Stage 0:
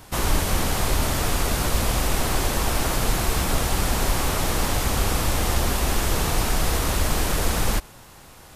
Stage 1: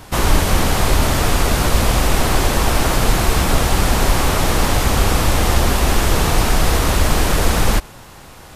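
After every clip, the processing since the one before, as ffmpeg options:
-af "highshelf=f=6000:g=-5,volume=2.37"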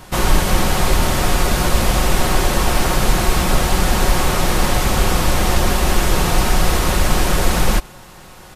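-af "aecho=1:1:5.5:0.36,volume=0.891"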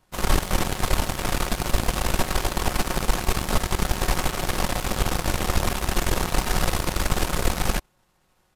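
-af "aeval=exprs='0.891*(cos(1*acos(clip(val(0)/0.891,-1,1)))-cos(1*PI/2))+0.126*(cos(3*acos(clip(val(0)/0.891,-1,1)))-cos(3*PI/2))+0.0355*(cos(6*acos(clip(val(0)/0.891,-1,1)))-cos(6*PI/2))+0.0631*(cos(7*acos(clip(val(0)/0.891,-1,1)))-cos(7*PI/2))':c=same,volume=0.596"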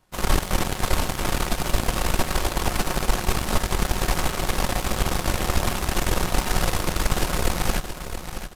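-af "aecho=1:1:674|1348|2022:0.335|0.1|0.0301"

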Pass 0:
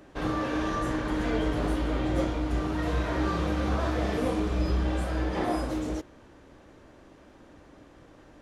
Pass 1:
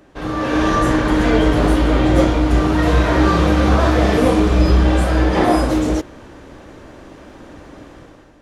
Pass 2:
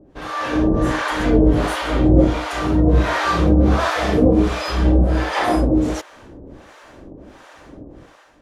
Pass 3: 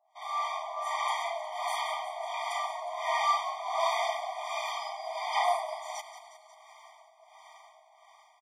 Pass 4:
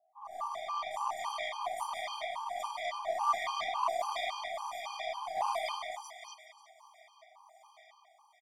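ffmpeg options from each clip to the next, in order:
-af "dynaudnorm=f=130:g=7:m=3.55,volume=1.41"
-filter_complex "[0:a]acrossover=split=630[s0][s1];[s0]aeval=exprs='val(0)*(1-1/2+1/2*cos(2*PI*1.4*n/s))':c=same[s2];[s1]aeval=exprs='val(0)*(1-1/2-1/2*cos(2*PI*1.4*n/s))':c=same[s3];[s2][s3]amix=inputs=2:normalize=0,volume=1.33"
-filter_complex "[0:a]asplit=2[s0][s1];[s1]asplit=8[s2][s3][s4][s5][s6][s7][s8][s9];[s2]adelay=180,afreqshift=-87,volume=0.282[s10];[s3]adelay=360,afreqshift=-174,volume=0.178[s11];[s4]adelay=540,afreqshift=-261,volume=0.112[s12];[s5]adelay=720,afreqshift=-348,volume=0.0708[s13];[s6]adelay=900,afreqshift=-435,volume=0.0442[s14];[s7]adelay=1080,afreqshift=-522,volume=0.0279[s15];[s8]adelay=1260,afreqshift=-609,volume=0.0176[s16];[s9]adelay=1440,afreqshift=-696,volume=0.0111[s17];[s10][s11][s12][s13][s14][s15][s16][s17]amix=inputs=8:normalize=0[s18];[s0][s18]amix=inputs=2:normalize=0,afftfilt=real='re*eq(mod(floor(b*sr/1024/620),2),1)':imag='im*eq(mod(floor(b*sr/1024/620),2),1)':win_size=1024:overlap=0.75,volume=0.531"
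-filter_complex "[0:a]acrossover=split=1300|5800[s0][s1][s2];[s2]adelay=90[s3];[s1]adelay=330[s4];[s0][s4][s3]amix=inputs=3:normalize=0,aeval=exprs='0.133*(cos(1*acos(clip(val(0)/0.133,-1,1)))-cos(1*PI/2))+0.00841*(cos(3*acos(clip(val(0)/0.133,-1,1)))-cos(3*PI/2))+0.00237*(cos(6*acos(clip(val(0)/0.133,-1,1)))-cos(6*PI/2))+0.00211*(cos(7*acos(clip(val(0)/0.133,-1,1)))-cos(7*PI/2))+0.00237*(cos(8*acos(clip(val(0)/0.133,-1,1)))-cos(8*PI/2))':c=same,afftfilt=real='re*gt(sin(2*PI*3.6*pts/sr)*(1-2*mod(floor(b*sr/1024/810),2)),0)':imag='im*gt(sin(2*PI*3.6*pts/sr)*(1-2*mod(floor(b*sr/1024/810),2)),0)':win_size=1024:overlap=0.75,volume=1.5"

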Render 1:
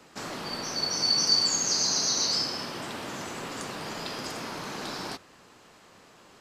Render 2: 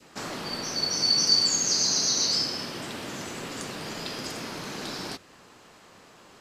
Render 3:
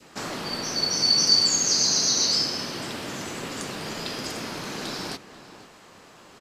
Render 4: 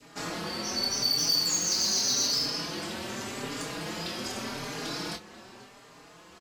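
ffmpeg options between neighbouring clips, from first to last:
-af "adynamicequalizer=threshold=0.00447:dfrequency=970:dqfactor=0.98:tfrequency=970:tqfactor=0.98:attack=5:release=100:ratio=0.375:range=2.5:mode=cutabove:tftype=bell,volume=1.26"
-filter_complex "[0:a]asplit=2[s0][s1];[s1]adelay=489.8,volume=0.2,highshelf=f=4000:g=-11[s2];[s0][s2]amix=inputs=2:normalize=0,volume=1.33"
-filter_complex "[0:a]asoftclip=type=tanh:threshold=0.119,asplit=2[s0][s1];[s1]adelay=24,volume=0.447[s2];[s0][s2]amix=inputs=2:normalize=0,asplit=2[s3][s4];[s4]adelay=4.5,afreqshift=0.85[s5];[s3][s5]amix=inputs=2:normalize=1"

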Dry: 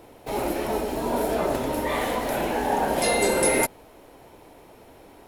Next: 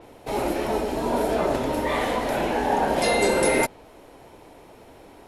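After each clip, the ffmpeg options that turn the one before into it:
-af "lowpass=11000,adynamicequalizer=threshold=0.00708:dfrequency=6600:dqfactor=0.7:tfrequency=6600:tqfactor=0.7:attack=5:release=100:ratio=0.375:range=2.5:mode=cutabove:tftype=highshelf,volume=1.19"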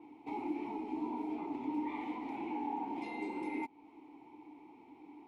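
-filter_complex "[0:a]acompressor=threshold=0.0316:ratio=3,asplit=3[s0][s1][s2];[s0]bandpass=f=300:t=q:w=8,volume=1[s3];[s1]bandpass=f=870:t=q:w=8,volume=0.501[s4];[s2]bandpass=f=2240:t=q:w=8,volume=0.355[s5];[s3][s4][s5]amix=inputs=3:normalize=0,volume=1.33"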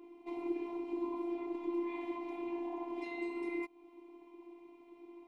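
-af "afftfilt=real='hypot(re,im)*cos(PI*b)':imag='0':win_size=512:overlap=0.75,volume=1.33"

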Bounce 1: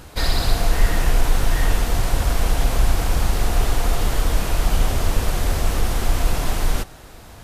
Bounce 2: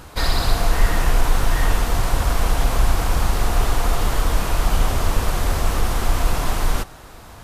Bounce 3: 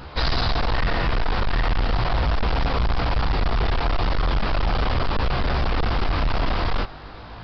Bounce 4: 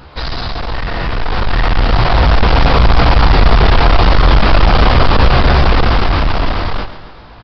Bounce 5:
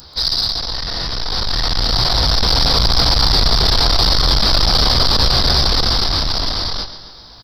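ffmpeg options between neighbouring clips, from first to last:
-af "equalizer=f=1100:t=o:w=0.86:g=5"
-af "flanger=delay=15:depth=6.7:speed=0.38,aresample=11025,asoftclip=type=hard:threshold=0.0708,aresample=44100,volume=1.88"
-filter_complex "[0:a]dynaudnorm=f=290:g=11:m=4.47,asplit=2[s0][s1];[s1]aecho=0:1:135|270|405|540|675:0.237|0.119|0.0593|0.0296|0.0148[s2];[s0][s2]amix=inputs=2:normalize=0,volume=1.12"
-af "aexciter=amount=12.5:drive=8:freq=4100,volume=0.398"

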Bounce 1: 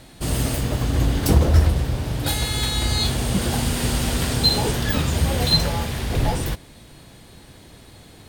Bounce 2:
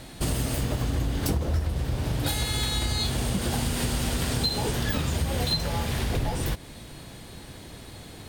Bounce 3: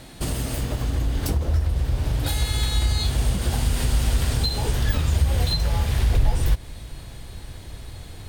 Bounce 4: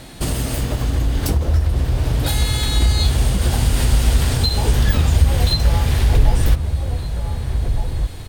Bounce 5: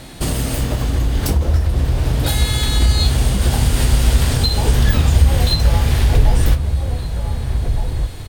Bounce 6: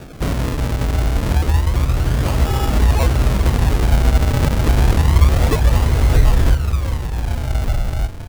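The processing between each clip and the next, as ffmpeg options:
-af "acompressor=threshold=0.0501:ratio=6,volume=1.33"
-af "asubboost=boost=5:cutoff=88"
-filter_complex "[0:a]asplit=2[s0][s1];[s1]adelay=1516,volume=0.501,highshelf=f=4000:g=-34.1[s2];[s0][s2]amix=inputs=2:normalize=0,volume=1.78"
-filter_complex "[0:a]asplit=2[s0][s1];[s1]adelay=30,volume=0.251[s2];[s0][s2]amix=inputs=2:normalize=0,volume=1.19"
-af "acrusher=samples=42:mix=1:aa=0.000001:lfo=1:lforange=42:lforate=0.29"

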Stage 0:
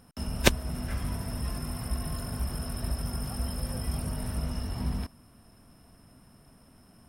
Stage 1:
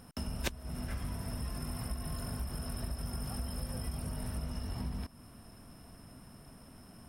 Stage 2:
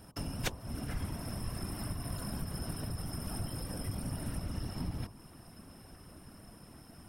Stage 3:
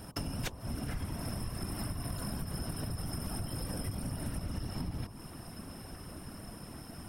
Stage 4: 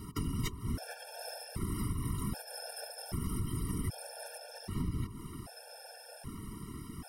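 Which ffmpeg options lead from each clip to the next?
-af "acompressor=threshold=0.0112:ratio=4,volume=1.41"
-af "bandreject=f=46.18:t=h:w=4,bandreject=f=92.36:t=h:w=4,bandreject=f=138.54:t=h:w=4,bandreject=f=184.72:t=h:w=4,bandreject=f=230.9:t=h:w=4,bandreject=f=277.08:t=h:w=4,bandreject=f=323.26:t=h:w=4,bandreject=f=369.44:t=h:w=4,bandreject=f=415.62:t=h:w=4,bandreject=f=461.8:t=h:w=4,bandreject=f=507.98:t=h:w=4,bandreject=f=554.16:t=h:w=4,bandreject=f=600.34:t=h:w=4,bandreject=f=646.52:t=h:w=4,bandreject=f=692.7:t=h:w=4,bandreject=f=738.88:t=h:w=4,bandreject=f=785.06:t=h:w=4,bandreject=f=831.24:t=h:w=4,bandreject=f=877.42:t=h:w=4,bandreject=f=923.6:t=h:w=4,bandreject=f=969.78:t=h:w=4,bandreject=f=1015.96:t=h:w=4,bandreject=f=1062.14:t=h:w=4,bandreject=f=1108.32:t=h:w=4,bandreject=f=1154.5:t=h:w=4,bandreject=f=1200.68:t=h:w=4,afftfilt=real='hypot(re,im)*cos(2*PI*random(0))':imag='hypot(re,im)*sin(2*PI*random(1))':win_size=512:overlap=0.75,volume=2.24"
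-af "acompressor=threshold=0.00891:ratio=5,volume=2.24"
-af "afftfilt=real='re*gt(sin(2*PI*0.64*pts/sr)*(1-2*mod(floor(b*sr/1024/460),2)),0)':imag='im*gt(sin(2*PI*0.64*pts/sr)*(1-2*mod(floor(b*sr/1024/460),2)),0)':win_size=1024:overlap=0.75,volume=1.41"

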